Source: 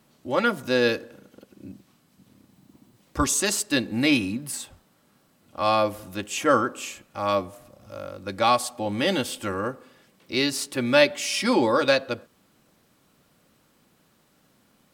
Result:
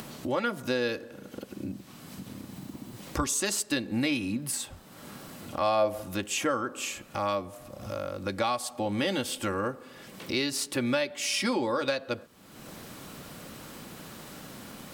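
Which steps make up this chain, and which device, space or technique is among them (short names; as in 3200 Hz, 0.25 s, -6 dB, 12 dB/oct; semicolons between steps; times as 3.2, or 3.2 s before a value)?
upward and downward compression (upward compressor, threshold -28 dBFS; compressor 6:1, threshold -25 dBFS, peak gain reduction 12.5 dB); 5.6–6.01 bell 650 Hz +3 dB -> +14 dB 0.54 oct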